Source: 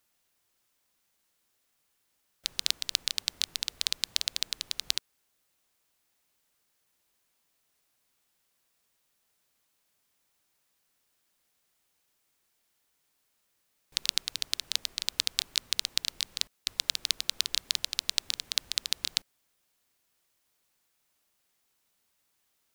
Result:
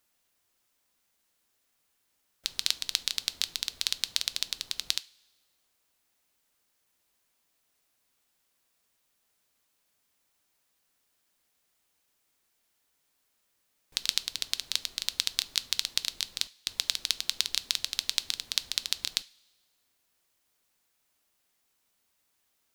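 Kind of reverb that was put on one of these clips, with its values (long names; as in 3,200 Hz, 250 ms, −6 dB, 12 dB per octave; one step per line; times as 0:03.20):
coupled-rooms reverb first 0.28 s, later 1.5 s, from −19 dB, DRR 14.5 dB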